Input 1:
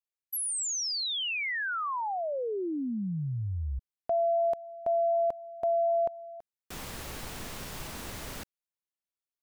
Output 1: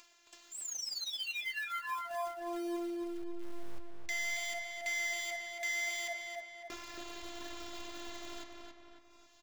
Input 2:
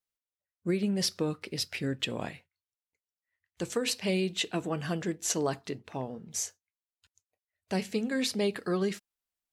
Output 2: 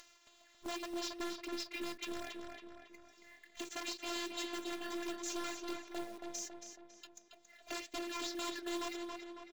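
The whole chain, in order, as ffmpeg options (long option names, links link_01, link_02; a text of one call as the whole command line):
ffmpeg -i in.wav -filter_complex "[0:a]agate=range=-24dB:threshold=-40dB:ratio=16:release=60:detection=rms,bass=frequency=250:gain=-3,treble=frequency=4000:gain=-2,aresample=16000,aeval=exprs='(mod(16.8*val(0)+1,2)-1)/16.8':channel_layout=same,aresample=44100,lowshelf=frequency=170:gain=-9.5,acompressor=threshold=-57dB:ratio=2:attack=0.19:release=21:detection=peak,afftfilt=real='hypot(re,im)*cos(PI*b)':imag='0':win_size=512:overlap=0.75,acompressor=mode=upward:threshold=-50dB:ratio=4:attack=7.7:release=358:knee=2.83:detection=peak,acrusher=bits=3:mode=log:mix=0:aa=0.000001,flanger=delay=3.2:depth=2.5:regen=79:speed=2:shape=triangular,asoftclip=type=tanh:threshold=-37.5dB,asplit=2[link_01][link_02];[link_02]adelay=276,lowpass=frequency=3700:poles=1,volume=-4dB,asplit=2[link_03][link_04];[link_04]adelay=276,lowpass=frequency=3700:poles=1,volume=0.52,asplit=2[link_05][link_06];[link_06]adelay=276,lowpass=frequency=3700:poles=1,volume=0.52,asplit=2[link_07][link_08];[link_08]adelay=276,lowpass=frequency=3700:poles=1,volume=0.52,asplit=2[link_09][link_10];[link_10]adelay=276,lowpass=frequency=3700:poles=1,volume=0.52,asplit=2[link_11][link_12];[link_12]adelay=276,lowpass=frequency=3700:poles=1,volume=0.52,asplit=2[link_13][link_14];[link_14]adelay=276,lowpass=frequency=3700:poles=1,volume=0.52[link_15];[link_01][link_03][link_05][link_07][link_09][link_11][link_13][link_15]amix=inputs=8:normalize=0,volume=14.5dB" out.wav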